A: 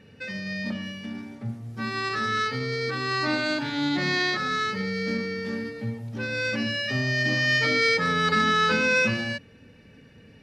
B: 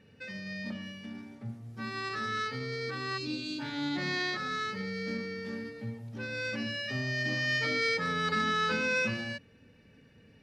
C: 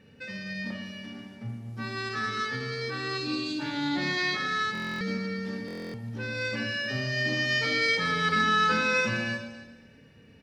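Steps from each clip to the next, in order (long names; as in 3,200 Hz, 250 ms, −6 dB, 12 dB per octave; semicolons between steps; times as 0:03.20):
gain on a spectral selection 0:03.18–0:03.59, 570–2,300 Hz −22 dB; level −7.5 dB
single-tap delay 256 ms −16.5 dB; on a send at −6 dB: convolution reverb RT60 1.3 s, pre-delay 26 ms; on the sum: buffer that repeats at 0:04.73/0:05.66, samples 1,024, times 11; level +3 dB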